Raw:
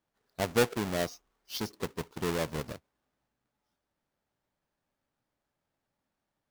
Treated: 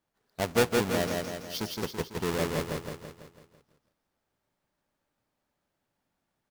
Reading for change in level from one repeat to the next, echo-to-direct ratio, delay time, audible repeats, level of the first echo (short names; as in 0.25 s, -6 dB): -5.5 dB, -1.5 dB, 0.166 s, 6, -3.0 dB